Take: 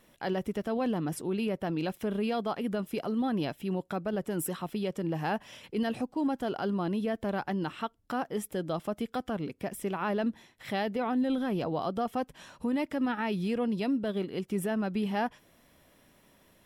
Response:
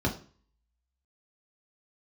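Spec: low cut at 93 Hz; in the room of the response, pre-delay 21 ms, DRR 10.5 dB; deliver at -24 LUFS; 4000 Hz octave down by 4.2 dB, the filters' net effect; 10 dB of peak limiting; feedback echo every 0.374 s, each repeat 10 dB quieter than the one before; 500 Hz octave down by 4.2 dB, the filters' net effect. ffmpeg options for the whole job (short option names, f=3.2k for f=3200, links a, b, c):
-filter_complex "[0:a]highpass=93,equalizer=f=500:t=o:g=-5.5,equalizer=f=4k:t=o:g=-6,alimiter=level_in=8dB:limit=-24dB:level=0:latency=1,volume=-8dB,aecho=1:1:374|748|1122|1496:0.316|0.101|0.0324|0.0104,asplit=2[a][b];[1:a]atrim=start_sample=2205,adelay=21[c];[b][c]afir=irnorm=-1:irlink=0,volume=-19.5dB[d];[a][d]amix=inputs=2:normalize=0,volume=13.5dB"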